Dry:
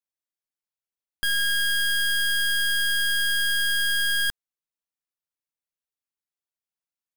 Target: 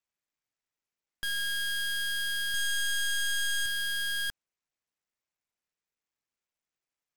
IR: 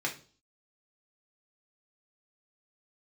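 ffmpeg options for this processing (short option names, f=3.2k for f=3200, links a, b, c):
-filter_complex "[0:a]asettb=1/sr,asplit=3[a][b][c];[a]atrim=end=2.544[d];[b]atrim=start=2.54:end=3.66,asetpts=PTS-STARTPTS,afade=t=in:d=0.004:c=qsin,afade=t=out:st=1.116:d=0.004:c=qsin,equalizer=f=400:t=o:w=0.67:g=-4,equalizer=f=1k:t=o:w=0.67:g=-12,equalizer=f=2.5k:t=o:w=0.67:g=-9[e];[c]atrim=start=3.656[f];[d][e]acrossfade=d=0.004:c1=hsin:c2=qsin[g];[g][f]acrossfade=d=0.004:c1=qsin:c2=hsin,aeval=exprs='0.0501*(abs(mod(val(0)/0.0501+3,4)-2)-1)':c=same" -ar 44100 -c:a sbc -b:a 128k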